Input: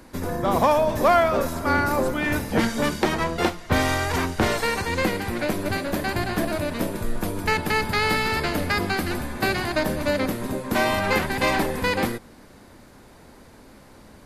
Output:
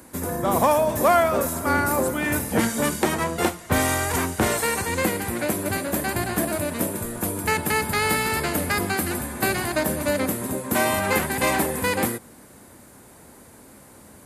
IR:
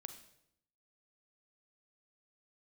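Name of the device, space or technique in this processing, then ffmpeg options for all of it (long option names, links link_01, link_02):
budget condenser microphone: -af "highpass=65,highshelf=frequency=6500:width_type=q:width=1.5:gain=9"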